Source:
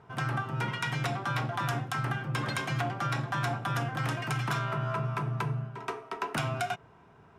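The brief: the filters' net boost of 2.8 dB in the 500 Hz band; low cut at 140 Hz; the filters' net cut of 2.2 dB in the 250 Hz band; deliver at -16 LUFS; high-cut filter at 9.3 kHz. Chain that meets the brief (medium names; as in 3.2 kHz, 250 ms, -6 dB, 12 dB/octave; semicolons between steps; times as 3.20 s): high-pass 140 Hz; low-pass 9.3 kHz; peaking EQ 250 Hz -3 dB; peaking EQ 500 Hz +5 dB; trim +17 dB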